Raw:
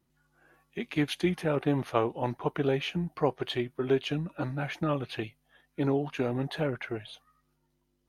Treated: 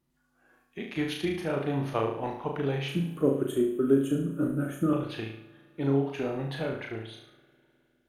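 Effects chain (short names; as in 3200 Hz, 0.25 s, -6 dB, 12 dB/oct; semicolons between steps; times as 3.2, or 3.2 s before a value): 2.88–4.93 EQ curve 110 Hz 0 dB, 290 Hz +11 dB, 580 Hz +1 dB, 830 Hz -18 dB, 1300 Hz +3 dB, 2200 Hz -16 dB, 3300 Hz -8 dB, 4800 Hz -28 dB, 7300 Hz +15 dB; flutter echo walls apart 6.2 m, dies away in 0.59 s; spring tank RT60 3 s, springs 51 ms, chirp 35 ms, DRR 18.5 dB; gain -3.5 dB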